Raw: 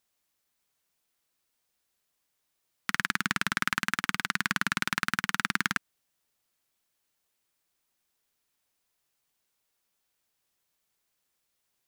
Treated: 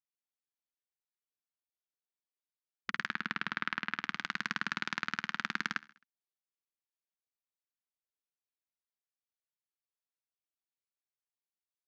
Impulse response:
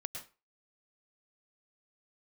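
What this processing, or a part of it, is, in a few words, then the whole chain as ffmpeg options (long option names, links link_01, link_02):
over-cleaned archive recording: -filter_complex "[0:a]highpass=170,lowpass=6500,afwtdn=0.00562,asettb=1/sr,asplit=3[link_01][link_02][link_03];[link_01]atrim=end=3.094[link_04];[link_02]atrim=start=3.09:end=4,asetpts=PTS-STARTPTS,afade=type=in:duration=0.004:curve=qsin,afade=type=out:start_time=0.906:duration=0.004:curve=qsin,acrossover=split=4600[link_05][link_06];[link_06]acompressor=threshold=-54dB:ratio=4:attack=1:release=60[link_07];[link_05][link_07]amix=inputs=2:normalize=0[link_08];[link_03]atrim=start=3.996[link_09];[link_04][link_08]acrossfade=duration=0.004:curve1=hsin:curve2=qsin[link_10];[link_10][link_09]acrossfade=duration=0.004:curve1=qsin:curve2=hsin,aecho=1:1:66|132|198|264:0.0841|0.0463|0.0255|0.014,volume=-6.5dB"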